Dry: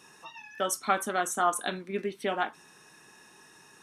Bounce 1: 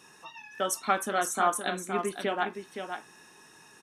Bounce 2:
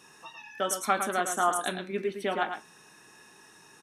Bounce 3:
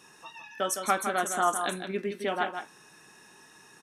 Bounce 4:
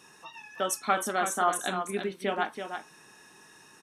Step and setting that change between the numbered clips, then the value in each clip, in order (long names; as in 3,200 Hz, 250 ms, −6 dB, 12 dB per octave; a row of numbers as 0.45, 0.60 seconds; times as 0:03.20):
single-tap delay, delay time: 517, 109, 161, 330 milliseconds